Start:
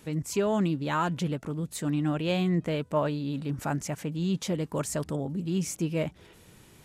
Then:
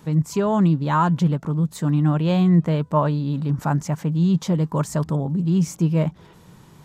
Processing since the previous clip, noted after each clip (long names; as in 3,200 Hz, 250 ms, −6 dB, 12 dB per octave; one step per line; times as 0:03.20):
graphic EQ with 15 bands 160 Hz +10 dB, 1,000 Hz +8 dB, 2,500 Hz −5 dB, 10,000 Hz −7 dB
level +3 dB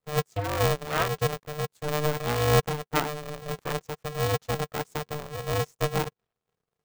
power curve on the samples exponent 2
ring modulator with a square carrier 300 Hz
level −2 dB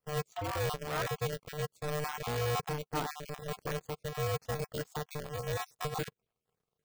time-frequency cells dropped at random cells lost 25%
soft clipping −26 dBFS, distortion −9 dB
level −2 dB